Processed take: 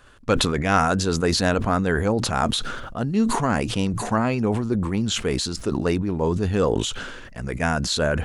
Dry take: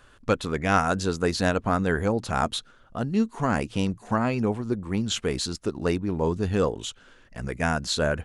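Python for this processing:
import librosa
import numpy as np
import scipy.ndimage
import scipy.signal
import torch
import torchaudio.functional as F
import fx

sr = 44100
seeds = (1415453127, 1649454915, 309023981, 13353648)

y = fx.sustainer(x, sr, db_per_s=36.0)
y = F.gain(torch.from_numpy(y), 2.0).numpy()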